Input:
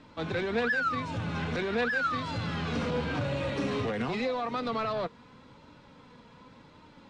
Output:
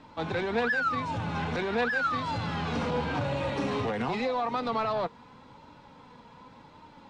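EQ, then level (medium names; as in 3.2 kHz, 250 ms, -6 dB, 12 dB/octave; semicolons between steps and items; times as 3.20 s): peaking EQ 860 Hz +8 dB 0.52 oct; 0.0 dB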